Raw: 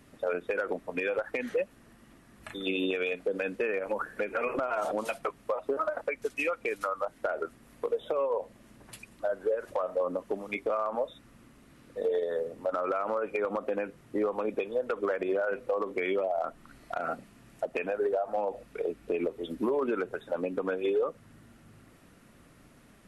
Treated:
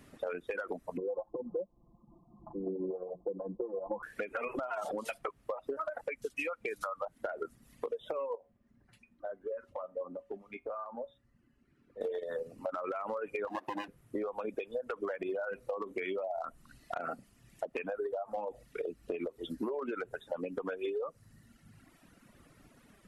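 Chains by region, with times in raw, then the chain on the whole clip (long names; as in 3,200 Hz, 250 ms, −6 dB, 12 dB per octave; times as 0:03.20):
0:00.97–0:04.03: Chebyshev low-pass with heavy ripple 1,100 Hz, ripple 3 dB + comb filter 5.8 ms, depth 94%
0:08.35–0:12.01: low-pass filter 1,400 Hz 6 dB per octave + tuned comb filter 80 Hz, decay 0.33 s, harmonics odd, mix 70%
0:13.47–0:13.88: lower of the sound and its delayed copy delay 1.1 ms + high-pass with resonance 330 Hz, resonance Q 3.3
whole clip: reverb reduction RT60 1.5 s; downward compressor, threshold −33 dBFS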